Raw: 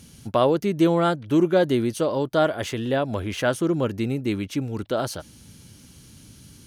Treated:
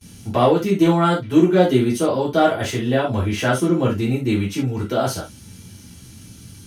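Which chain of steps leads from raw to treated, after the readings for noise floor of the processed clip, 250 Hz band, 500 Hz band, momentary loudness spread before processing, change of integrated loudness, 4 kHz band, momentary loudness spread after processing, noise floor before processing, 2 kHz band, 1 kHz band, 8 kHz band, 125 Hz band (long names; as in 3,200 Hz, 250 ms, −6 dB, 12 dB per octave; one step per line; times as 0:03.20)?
−43 dBFS, +5.0 dB, +3.5 dB, 8 LU, +4.5 dB, +4.0 dB, 8 LU, −49 dBFS, +4.5 dB, +5.5 dB, +5.5 dB, +6.5 dB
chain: noise gate with hold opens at −40 dBFS
in parallel at −10 dB: gain into a clipping stage and back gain 14 dB
on the sum: reverb whose tail is shaped and stops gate 100 ms falling, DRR −7 dB
level −5 dB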